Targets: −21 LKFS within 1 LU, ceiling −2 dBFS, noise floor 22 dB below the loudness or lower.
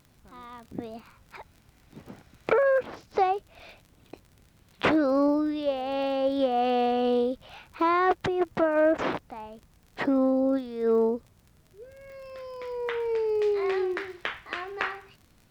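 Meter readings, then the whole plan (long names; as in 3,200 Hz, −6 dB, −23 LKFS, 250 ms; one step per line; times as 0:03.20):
crackle rate 44 per second; integrated loudness −26.5 LKFS; sample peak −10.5 dBFS; target loudness −21.0 LKFS
→ click removal
level +5.5 dB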